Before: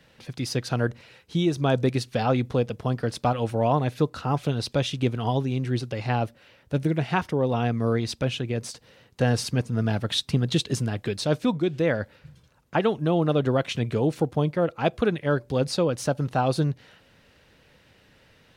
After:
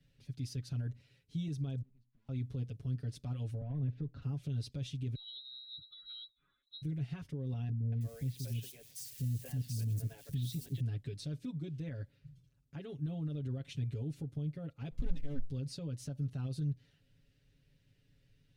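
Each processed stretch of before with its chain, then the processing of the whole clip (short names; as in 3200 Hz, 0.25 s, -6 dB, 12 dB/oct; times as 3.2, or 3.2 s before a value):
1.82–2.29 double band-pass 450 Hz, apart 2.3 oct + tube stage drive 44 dB, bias 0.75 + compressor 12:1, threshold -55 dBFS
3.61–4.22 sample leveller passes 1 + tape spacing loss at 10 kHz 36 dB + three-band squash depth 70%
5.15–6.82 spectral contrast raised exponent 1.8 + inverted band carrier 4000 Hz + resonant high shelf 1800 Hz -6.5 dB, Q 3
7.69–10.8 switching spikes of -25 dBFS + bell 1300 Hz -13.5 dB 0.23 oct + three bands offset in time lows, mids, highs 0.23/0.32 s, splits 420/3300 Hz
14.91–15.42 minimum comb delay 3.9 ms + low shelf 320 Hz +11.5 dB
whole clip: comb 7.2 ms, depth 97%; limiter -16 dBFS; passive tone stack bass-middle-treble 10-0-1; gain +1.5 dB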